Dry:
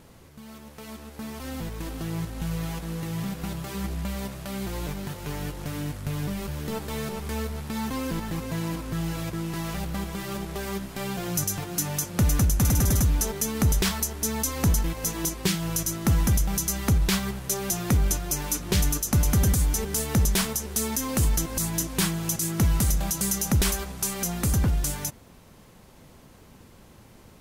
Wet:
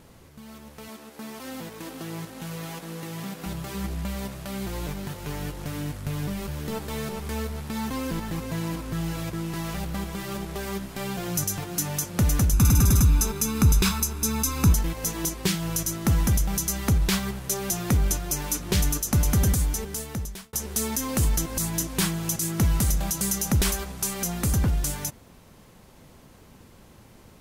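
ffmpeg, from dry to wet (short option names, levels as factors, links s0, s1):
-filter_complex "[0:a]asettb=1/sr,asplit=3[s0][s1][s2];[s0]atrim=end=0.884[s3];[s1]atrim=start=0.88:end=3.46,asetpts=PTS-STARTPTS,afade=t=in:d=0.004:c=qsin,afade=t=out:st=2.576:d=0.004:c=qsin,highpass=210[s4];[s2]atrim=start=3.456[s5];[s3][s4]acrossfade=d=0.004:c1=hsin:c2=qsin[s6];[s6][s5]acrossfade=d=0.004:c1=qsin:c2=hsin,asettb=1/sr,asplit=3[s7][s8][s9];[s7]atrim=end=12.534[s10];[s8]atrim=start=12.53:end=14.73,asetpts=PTS-STARTPTS,afade=t=in:d=0.004:c=qsin,afade=t=out:st=2.196:d=0.004:c=qsin,aecho=1:1:0.8:0.59,atrim=end_sample=97020[s11];[s9]atrim=start=14.726[s12];[s10][s11]acrossfade=d=0.004:c1=hsin:c2=qsin[s13];[s13][s12]acrossfade=d=0.004:c1=qsin:c2=hsin,asplit=2[s14][s15];[s14]atrim=end=20.53,asetpts=PTS-STARTPTS,afade=t=out:st=19.5:d=1.03[s16];[s15]atrim=start=20.53,asetpts=PTS-STARTPTS,afade=t=in:d=0.004:c=hsin[s17];[s16][s17]concat=n=2:v=0:a=1"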